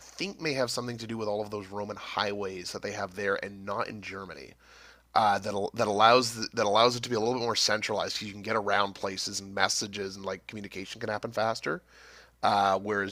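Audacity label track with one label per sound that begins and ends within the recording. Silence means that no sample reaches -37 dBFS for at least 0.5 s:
5.150000	11.780000	sound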